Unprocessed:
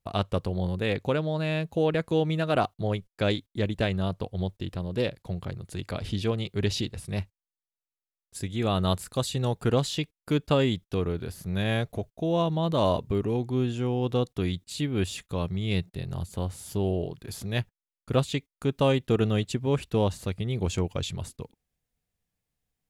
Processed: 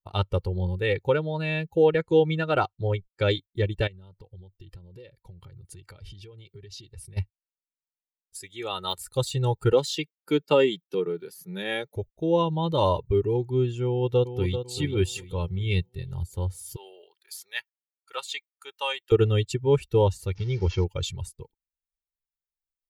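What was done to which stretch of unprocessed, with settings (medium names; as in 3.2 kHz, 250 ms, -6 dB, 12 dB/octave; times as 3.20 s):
1.95–3.31 s: low-pass 9.1 kHz 24 dB/octave
3.87–7.17 s: compression 20:1, threshold -36 dBFS
8.38–8.98 s: high-pass 590 Hz 6 dB/octave
9.72–11.96 s: steep high-pass 160 Hz
13.86–14.57 s: echo throw 390 ms, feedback 50%, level -6.5 dB
16.76–19.12 s: high-pass 1 kHz
20.35–20.84 s: one-bit delta coder 32 kbps, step -38.5 dBFS
whole clip: expander on every frequency bin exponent 1.5; de-esser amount 80%; comb 2.2 ms, depth 71%; trim +4 dB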